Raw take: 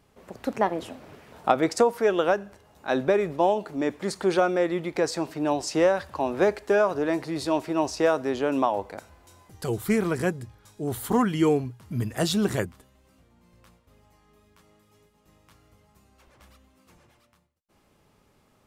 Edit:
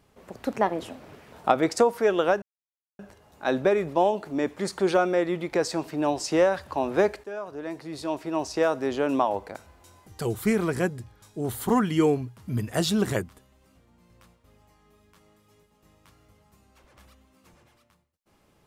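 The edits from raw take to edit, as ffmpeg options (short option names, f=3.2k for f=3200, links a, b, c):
-filter_complex "[0:a]asplit=3[a][b][c];[a]atrim=end=2.42,asetpts=PTS-STARTPTS,afade=t=out:st=2.416:d=0.004:c=hsin,apad=pad_dur=0.57[d];[b]atrim=start=2.42:end=6.67,asetpts=PTS-STARTPTS,afade=t=in:d=0.004:c=hsin,afade=t=out:st=4.246:d=0.004:c=hsin:silence=0.141254[e];[c]atrim=start=6.67,asetpts=PTS-STARTPTS,afade=t=in:d=1.7:silence=0.141254[f];[d][e][f]concat=n=3:v=0:a=1"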